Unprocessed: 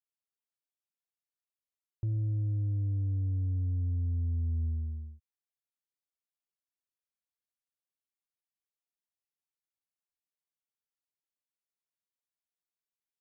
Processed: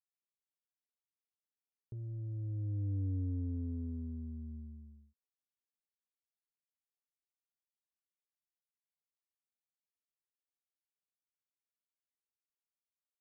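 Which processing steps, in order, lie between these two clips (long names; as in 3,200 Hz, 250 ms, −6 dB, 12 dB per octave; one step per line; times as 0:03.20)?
source passing by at 0:03.02, 19 m/s, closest 8.7 metres
hollow resonant body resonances 250/420 Hz, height 17 dB, ringing for 65 ms
windowed peak hold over 5 samples
level −5.5 dB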